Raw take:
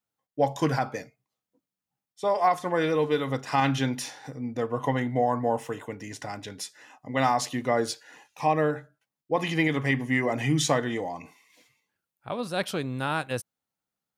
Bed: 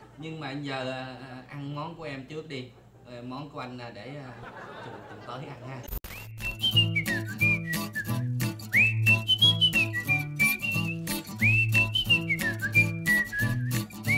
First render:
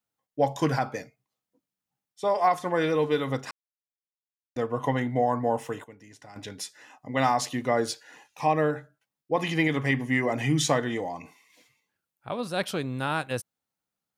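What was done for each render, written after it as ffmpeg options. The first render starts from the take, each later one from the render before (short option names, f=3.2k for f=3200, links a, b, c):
-filter_complex "[0:a]asplit=5[a][b][c][d][e];[a]atrim=end=3.51,asetpts=PTS-STARTPTS,afade=t=out:st=3.506:d=0.004:c=hsin[f];[b]atrim=start=3.51:end=4.56,asetpts=PTS-STARTPTS,volume=0[g];[c]atrim=start=4.56:end=5.842,asetpts=PTS-STARTPTS,afade=t=in:d=0.004:c=hsin[h];[d]atrim=start=5.838:end=6.362,asetpts=PTS-STARTPTS,volume=-12dB[i];[e]atrim=start=6.358[j];[f][g][h]concat=n=3:v=0:a=1[k];[k][i]acrossfade=d=0.004:c1=hsin:c2=hsin[l];[l][j]acrossfade=d=0.004:c1=hsin:c2=hsin"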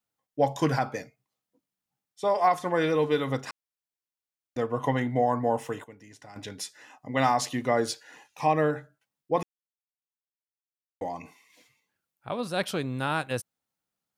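-filter_complex "[0:a]asplit=3[a][b][c];[a]atrim=end=9.43,asetpts=PTS-STARTPTS,afade=t=out:st=9.426:d=0.004:c=hsin[d];[b]atrim=start=9.43:end=11.01,asetpts=PTS-STARTPTS,volume=0[e];[c]atrim=start=11.01,asetpts=PTS-STARTPTS,afade=t=in:d=0.004:c=hsin[f];[d][e][f]concat=n=3:v=0:a=1"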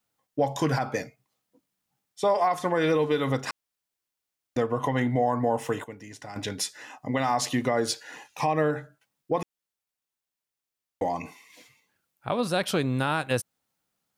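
-filter_complex "[0:a]asplit=2[a][b];[b]acompressor=threshold=-31dB:ratio=6,volume=2dB[c];[a][c]amix=inputs=2:normalize=0,alimiter=limit=-14.5dB:level=0:latency=1:release=118"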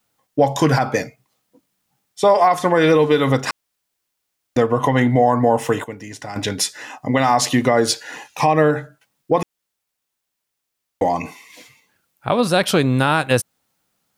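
-af "volume=9.5dB"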